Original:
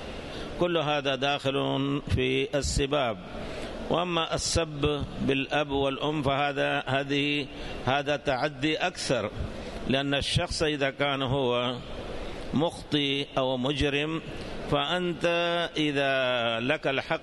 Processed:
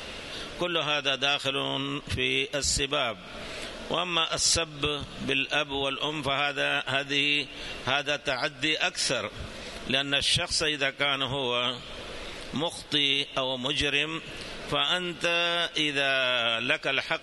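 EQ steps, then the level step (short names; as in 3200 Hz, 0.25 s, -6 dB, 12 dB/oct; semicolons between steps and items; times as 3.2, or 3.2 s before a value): tilt shelf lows -6.5 dB, about 1100 Hz; notch 760 Hz, Q 12; 0.0 dB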